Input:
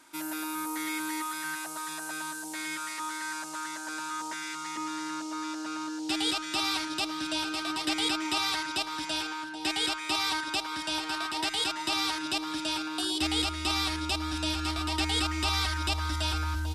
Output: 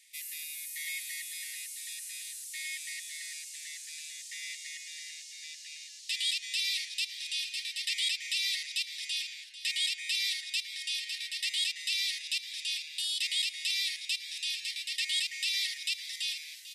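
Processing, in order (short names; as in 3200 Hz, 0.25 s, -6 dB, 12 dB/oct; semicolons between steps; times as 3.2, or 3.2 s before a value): Chebyshev high-pass 1800 Hz, order 10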